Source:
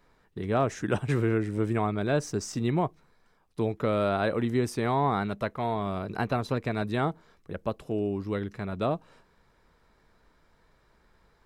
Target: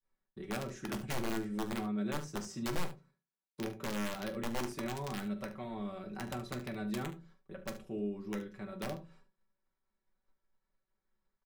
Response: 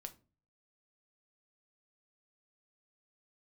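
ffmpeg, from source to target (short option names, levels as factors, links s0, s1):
-filter_complex "[0:a]asettb=1/sr,asplit=3[s0][s1][s2];[s0]atrim=end=1.724[s3];[s1]atrim=start=1.72:end=4.14,asetpts=PTS-STARTPTS,afade=t=in:d=0.004:c=qsin,afade=t=out:st=2.416:d=0.004:c=qsin,highpass=f=94:w=0.5412,highpass=f=94:w=1.3066[s4];[s2]atrim=start=4.136[s5];[s3][s4]acrossfade=d=0.004:c1=hsin:c2=qsin[s6];[s6][s5]acrossfade=d=0.004:c1=qsin:c2=hsin,agate=range=0.0224:threshold=0.00251:ratio=3:detection=peak,aecho=1:1:5.3:0.75,adynamicequalizer=threshold=0.00794:dfrequency=920:dqfactor=1.7:tfrequency=920:tqfactor=1.7:attack=5:release=100:ratio=0.375:range=3.5:mode=cutabove:tftype=bell,acrossover=split=340[s7][s8];[s8]acompressor=threshold=0.0355:ratio=5[s9];[s7][s9]amix=inputs=2:normalize=0,aeval=exprs='(mod(8.91*val(0)+1,2)-1)/8.91':c=same,aecho=1:1:44|72:0.168|0.211[s10];[1:a]atrim=start_sample=2205,asetrate=74970,aresample=44100[s11];[s10][s11]afir=irnorm=-1:irlink=0,volume=0.794"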